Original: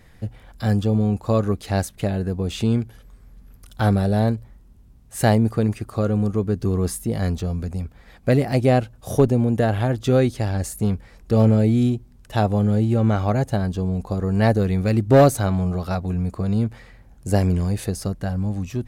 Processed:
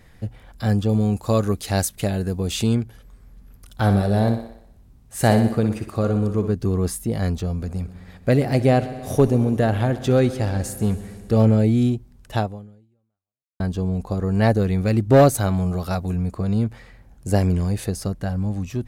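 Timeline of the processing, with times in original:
0:00.89–0:02.75: high-shelf EQ 4,000 Hz +10.5 dB
0:03.83–0:06.52: feedback echo with a high-pass in the loop 61 ms, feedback 56%, high-pass 170 Hz, level −8 dB
0:07.48–0:11.38: echo machine with several playback heads 66 ms, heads first and second, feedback 72%, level −19.5 dB
0:12.37–0:13.60: fade out exponential
0:15.33–0:16.15: high-shelf EQ 9,600 Hz → 5,800 Hz +9.5 dB

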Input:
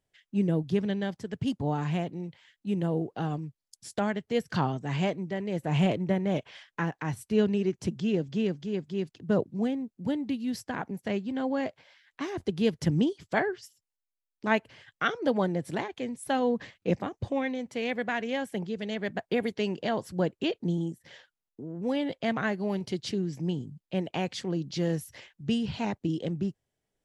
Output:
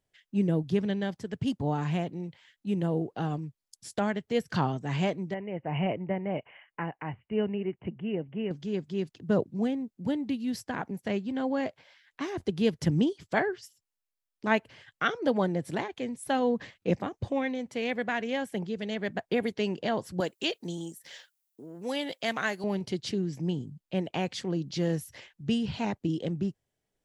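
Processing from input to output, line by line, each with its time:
0:05.34–0:08.51: Chebyshev low-pass with heavy ripple 3,000 Hz, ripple 6 dB
0:20.20–0:22.64: RIAA equalisation recording

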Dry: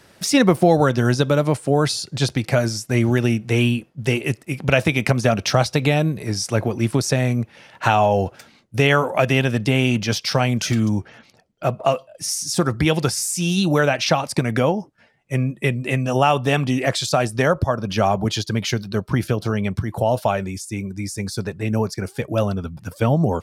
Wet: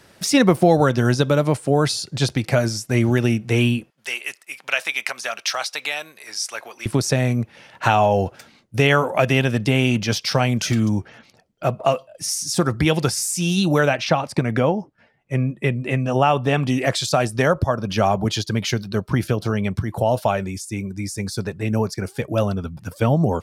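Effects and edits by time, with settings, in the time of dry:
0:03.90–0:06.86: high-pass filter 1,200 Hz
0:13.95–0:16.63: high-shelf EQ 4,500 Hz −10.5 dB

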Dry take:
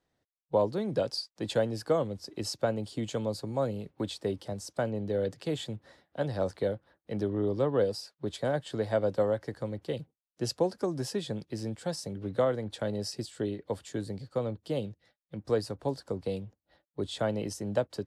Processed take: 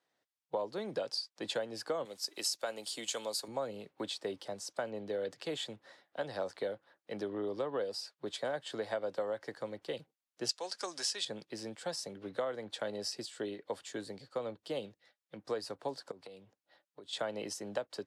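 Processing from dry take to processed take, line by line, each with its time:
0:02.05–0:03.48: RIAA equalisation recording
0:10.49–0:11.25: meter weighting curve ITU-R 468
0:16.11–0:17.13: downward compressor 12 to 1, threshold −42 dBFS
whole clip: meter weighting curve A; downward compressor 5 to 1, threshold −32 dBFS

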